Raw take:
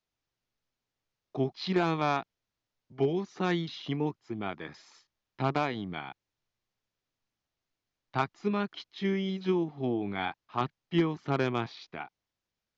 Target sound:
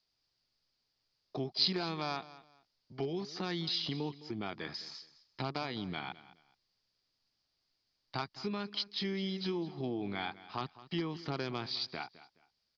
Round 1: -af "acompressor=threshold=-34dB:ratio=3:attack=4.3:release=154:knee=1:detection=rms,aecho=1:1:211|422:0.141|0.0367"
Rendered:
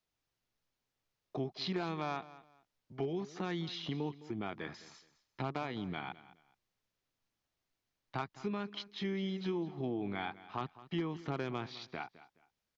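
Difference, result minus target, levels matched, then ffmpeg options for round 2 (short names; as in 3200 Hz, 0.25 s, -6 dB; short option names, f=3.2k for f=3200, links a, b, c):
4000 Hz band -6.5 dB
-af "acompressor=threshold=-34dB:ratio=3:attack=4.3:release=154:knee=1:detection=rms,lowpass=f=4.8k:t=q:w=7.9,aecho=1:1:211|422:0.141|0.0367"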